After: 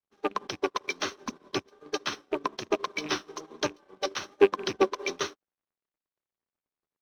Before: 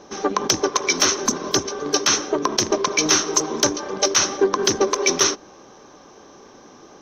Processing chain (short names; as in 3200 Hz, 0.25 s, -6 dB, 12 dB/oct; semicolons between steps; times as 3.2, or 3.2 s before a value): rattling part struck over -27 dBFS, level -16 dBFS; LPF 4300 Hz 24 dB/oct; crossover distortion -41.5 dBFS; vibrato 1.2 Hz 40 cents; upward expander 2.5:1, over -36 dBFS